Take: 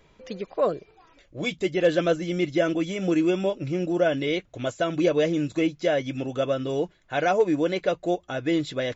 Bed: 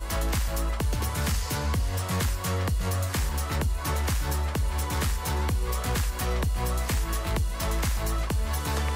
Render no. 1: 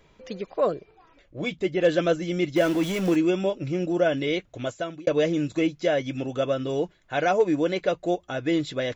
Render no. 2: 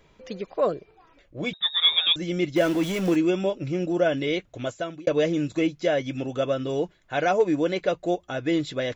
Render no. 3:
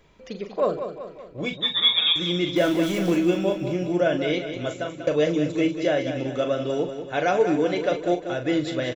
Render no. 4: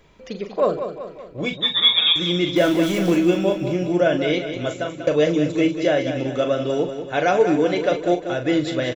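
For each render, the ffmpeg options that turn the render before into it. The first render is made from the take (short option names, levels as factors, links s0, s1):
-filter_complex "[0:a]asettb=1/sr,asplit=3[s0][s1][s2];[s0]atrim=end=0.744[s3];[s1]atrim=start=0.74:end=1.82,asetpts=PTS-STARTPTS,afade=t=in:d=0.004:c=qsin,afade=t=out:st=1.076:d=0.004:c=qsin,highshelf=f=5200:g=-12[s4];[s2]atrim=start=1.816[s5];[s3][s4]acrossfade=d=0.004:c1=hsin:c2=qsin[s6];[s6][s5]acrossfade=d=0.004:c1=qsin:c2=hsin,asettb=1/sr,asplit=3[s7][s8][s9];[s7]atrim=end=2.564[s10];[s8]atrim=start=2.56:end=3.16,asetpts=PTS-STARTPTS,afade=t=in:d=0.004:c=qsin,afade=t=out:st=0.596:d=0.004:c=qsin,aeval=exprs='val(0)+0.5*0.0316*sgn(val(0))':c=same[s11];[s9]atrim=start=3.156[s12];[s10][s11]acrossfade=d=0.004:c1=hsin:c2=qsin[s13];[s13][s12]acrossfade=d=0.004:c1=qsin:c2=hsin,asplit=2[s14][s15];[s14]atrim=end=5.07,asetpts=PTS-STARTPTS,afade=t=out:st=4.43:d=0.64:c=qsin[s16];[s15]atrim=start=5.07,asetpts=PTS-STARTPTS,afade=t=in:d=0.004:c=hsin[s17];[s16][s17]concat=n=2:v=0:a=1"
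-filter_complex "[0:a]asettb=1/sr,asplit=3[s0][s1][s2];[s0]atrim=end=1.534[s3];[s1]atrim=start=1.53:end=2.16,asetpts=PTS-STARTPTS,afade=t=in:d=0.004:c=qsin,afade=t=out:st=0.626:d=0.004:c=qsin,lowpass=f=3300:t=q:w=0.5098,lowpass=f=3300:t=q:w=0.6013,lowpass=f=3300:t=q:w=0.9,lowpass=f=3300:t=q:w=2.563,afreqshift=-3900[s4];[s2]atrim=start=2.156[s5];[s3][s4]acrossfade=d=0.004:c1=hsin:c2=qsin[s6];[s6][s5]acrossfade=d=0.004:c1=qsin:c2=hsin"
-filter_complex "[0:a]asplit=2[s0][s1];[s1]adelay=40,volume=0.376[s2];[s0][s2]amix=inputs=2:normalize=0,aecho=1:1:191|382|573|764|955|1146:0.355|0.185|0.0959|0.0499|0.0259|0.0135"
-af "volume=1.5"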